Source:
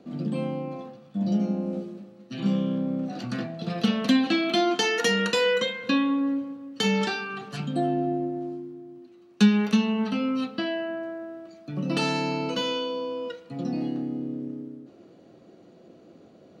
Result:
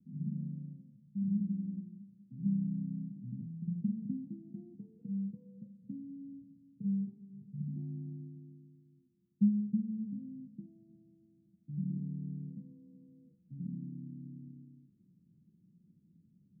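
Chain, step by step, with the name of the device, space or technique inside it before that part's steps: the neighbour's flat through the wall (low-pass 180 Hz 24 dB/octave; peaking EQ 180 Hz +7.5 dB 0.63 oct); trim -8.5 dB

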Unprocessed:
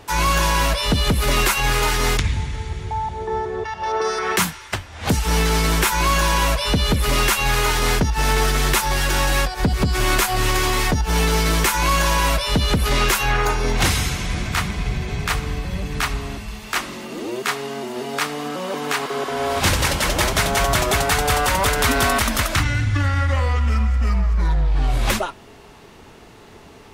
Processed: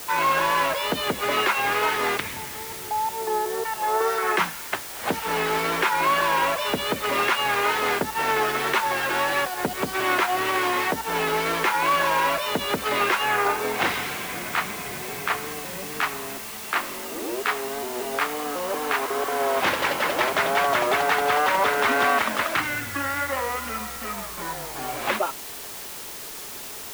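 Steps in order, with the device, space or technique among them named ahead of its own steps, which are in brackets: wax cylinder (band-pass 360–2500 Hz; wow and flutter; white noise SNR 12 dB)

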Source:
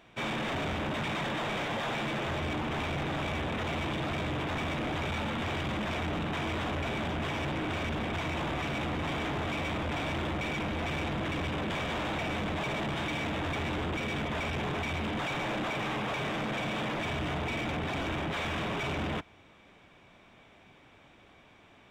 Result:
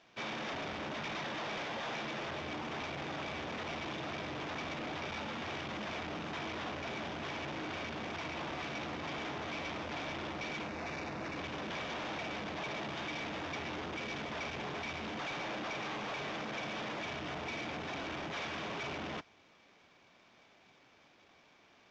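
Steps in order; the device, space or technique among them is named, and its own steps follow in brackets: early wireless headset (high-pass 250 Hz 6 dB/octave; CVSD coder 32 kbps); 10.68–11.38 s: peaking EQ 3.2 kHz -13 dB 0.23 oct; trim -5.5 dB

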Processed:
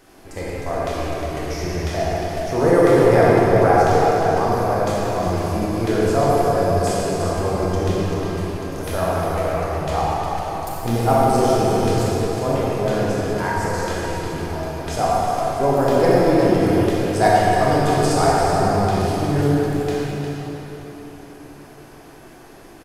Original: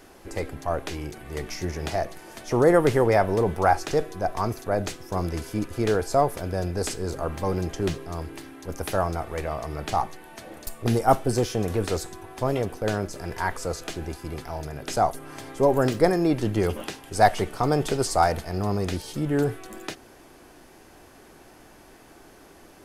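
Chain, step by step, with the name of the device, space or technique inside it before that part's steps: cave (delay 357 ms -9 dB; reverberation RT60 4.3 s, pre-delay 21 ms, DRR -7 dB); trim -2 dB

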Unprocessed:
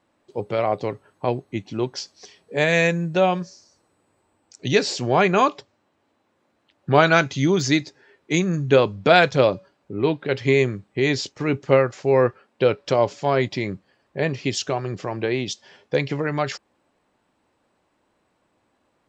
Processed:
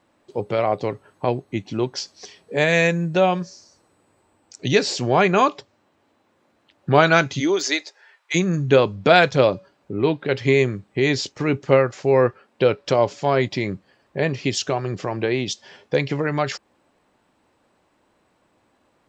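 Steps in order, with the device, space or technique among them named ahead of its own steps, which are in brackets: 7.39–8.34 s: high-pass 250 Hz -> 1 kHz 24 dB/octave; parallel compression (in parallel at -4 dB: compression, threshold -31 dBFS, peak gain reduction 20 dB)

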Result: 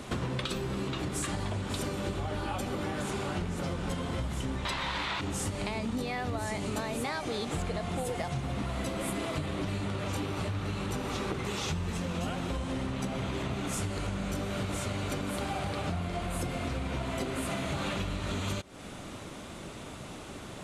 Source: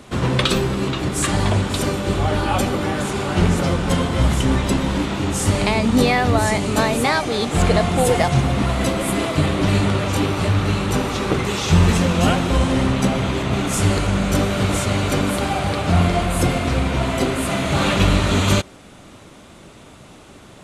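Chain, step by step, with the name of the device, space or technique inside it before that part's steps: 4.65–5.21 s: ten-band graphic EQ 250 Hz -8 dB, 1 kHz +10 dB, 2 kHz +10 dB, 4 kHz +12 dB; serial compression, leveller first (compression 1.5:1, threshold -26 dBFS, peak gain reduction 6 dB; compression 10:1, threshold -30 dBFS, peak gain reduction 15 dB)

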